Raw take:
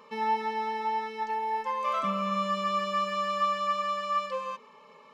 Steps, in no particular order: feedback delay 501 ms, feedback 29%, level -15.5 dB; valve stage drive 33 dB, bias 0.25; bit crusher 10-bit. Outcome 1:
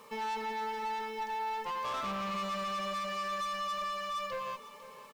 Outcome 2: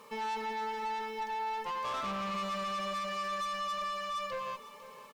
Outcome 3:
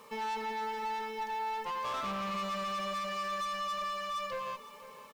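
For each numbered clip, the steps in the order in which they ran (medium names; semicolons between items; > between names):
valve stage > bit crusher > feedback delay; bit crusher > valve stage > feedback delay; valve stage > feedback delay > bit crusher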